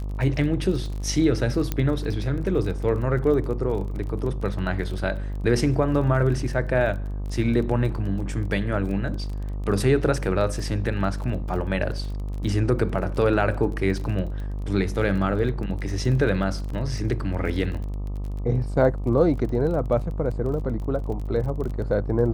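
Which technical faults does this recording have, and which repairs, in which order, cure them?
buzz 50 Hz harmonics 25 -29 dBFS
crackle 25/s -32 dBFS
1.72 pop -11 dBFS
16.7 gap 3.6 ms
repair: de-click; de-hum 50 Hz, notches 25; interpolate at 16.7, 3.6 ms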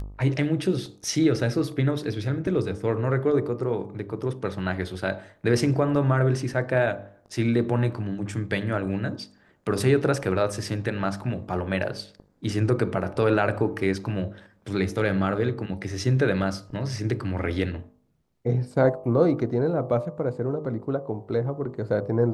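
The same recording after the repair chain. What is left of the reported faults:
none

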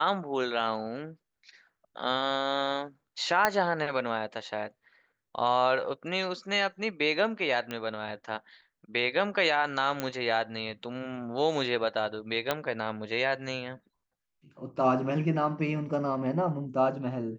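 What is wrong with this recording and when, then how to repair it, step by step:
3.45 pop -8 dBFS
7.71 pop -20 dBFS
10 pop -15 dBFS
12.51 pop -12 dBFS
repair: de-click

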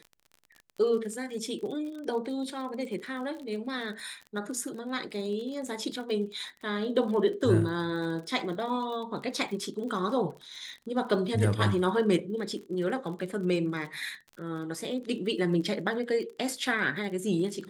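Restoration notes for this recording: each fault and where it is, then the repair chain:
crackle 37/s -38 dBFS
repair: de-click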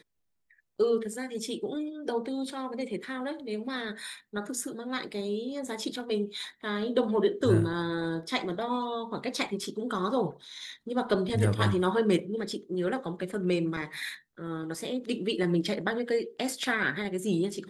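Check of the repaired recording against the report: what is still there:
none

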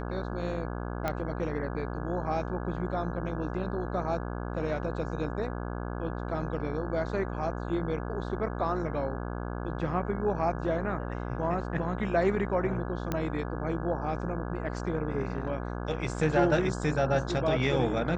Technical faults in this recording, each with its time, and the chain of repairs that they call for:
buzz 60 Hz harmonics 28 -35 dBFS
1.08 pop -16 dBFS
13.12 pop -16 dBFS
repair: de-click; de-hum 60 Hz, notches 28

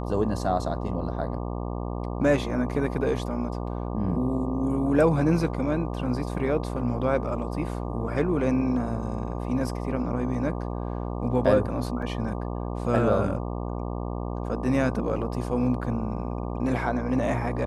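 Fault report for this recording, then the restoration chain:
buzz 60 Hz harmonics 20 -31 dBFS
12.02 gap 3.9 ms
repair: de-hum 60 Hz, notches 20; interpolate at 12.02, 3.9 ms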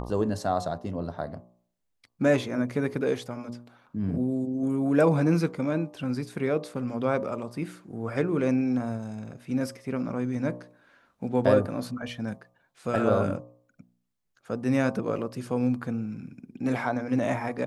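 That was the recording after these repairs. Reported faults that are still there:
none

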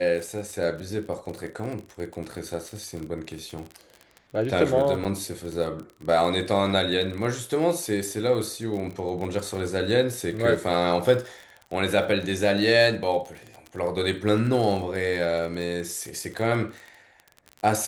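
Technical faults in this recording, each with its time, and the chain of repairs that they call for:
crackle 35/s -31 dBFS
5.04–5.05 gap 7.5 ms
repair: de-click; interpolate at 5.04, 7.5 ms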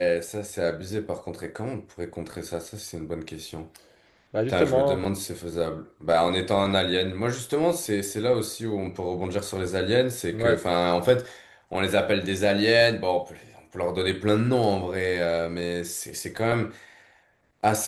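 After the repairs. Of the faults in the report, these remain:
none

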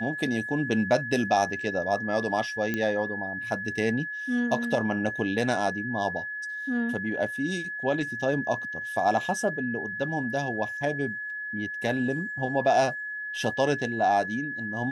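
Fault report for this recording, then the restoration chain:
tone 1700 Hz -32 dBFS
2.74 pop -15 dBFS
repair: de-click; notch 1700 Hz, Q 30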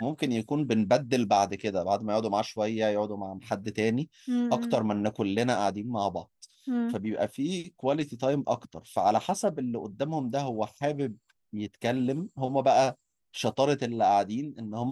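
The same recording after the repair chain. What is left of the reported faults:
none

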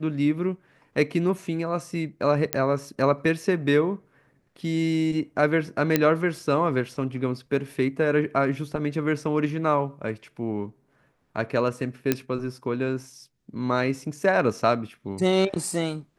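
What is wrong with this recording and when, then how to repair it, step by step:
2.53 pop -5 dBFS
5.96 pop -5 dBFS
12.12 pop -7 dBFS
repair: de-click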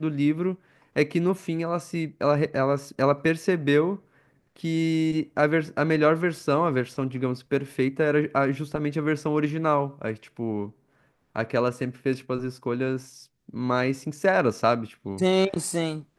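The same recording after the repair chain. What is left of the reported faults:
none

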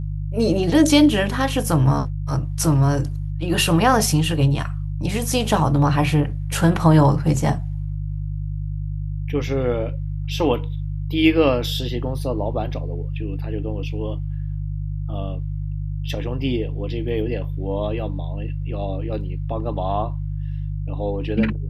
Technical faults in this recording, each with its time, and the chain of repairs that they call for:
hum 50 Hz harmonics 3 -26 dBFS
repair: de-hum 50 Hz, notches 3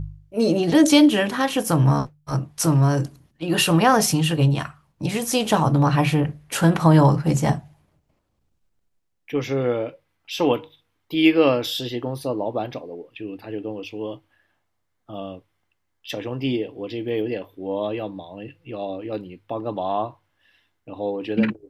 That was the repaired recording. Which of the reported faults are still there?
none

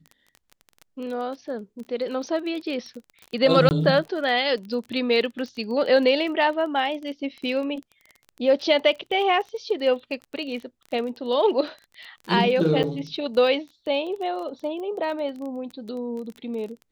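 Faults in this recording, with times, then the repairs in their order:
crackle 23/s -32 dBFS
3.69–3.71 gap 19 ms
12.83–12.84 gap 8 ms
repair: de-click; interpolate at 3.69, 19 ms; interpolate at 12.83, 8 ms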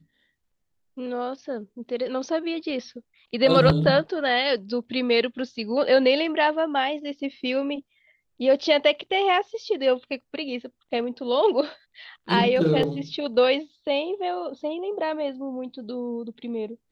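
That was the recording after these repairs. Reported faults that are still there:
none

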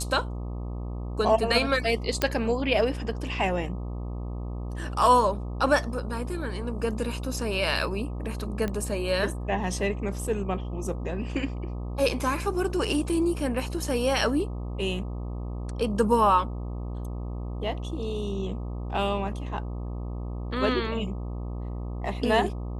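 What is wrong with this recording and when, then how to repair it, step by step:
buzz 60 Hz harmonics 21 -33 dBFS
2.22 pop -8 dBFS
8.68 pop -17 dBFS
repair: de-click; de-hum 60 Hz, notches 21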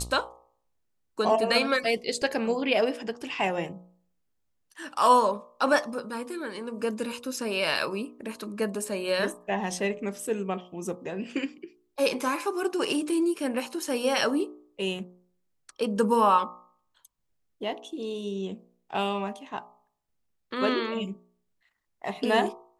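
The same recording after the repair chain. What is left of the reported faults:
none

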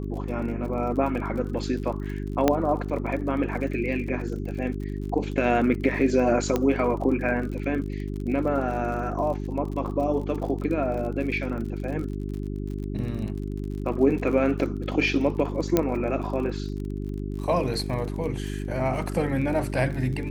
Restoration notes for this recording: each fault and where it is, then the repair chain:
crackle 46/s -34 dBFS
hum 50 Hz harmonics 8 -31 dBFS
2.48 pop -6 dBFS
6.56 pop -11 dBFS
15.77 pop -6 dBFS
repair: de-click; de-hum 50 Hz, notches 8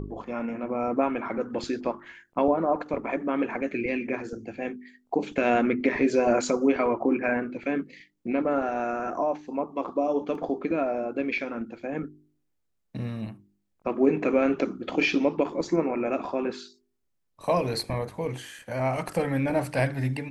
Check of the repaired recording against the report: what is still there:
none

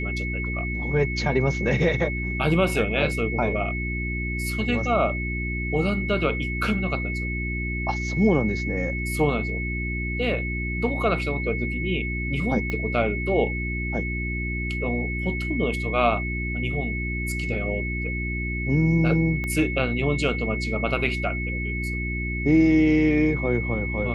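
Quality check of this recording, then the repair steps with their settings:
hum 60 Hz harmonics 6 -29 dBFS
tone 2200 Hz -30 dBFS
12.7 pop -16 dBFS
19.44 pop -18 dBFS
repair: de-click; notch 2200 Hz, Q 30; de-hum 60 Hz, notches 6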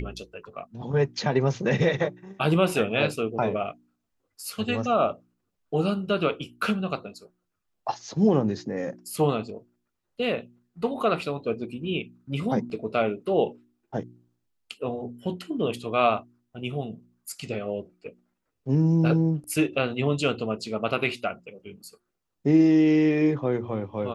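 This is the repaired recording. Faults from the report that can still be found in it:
12.7 pop
19.44 pop

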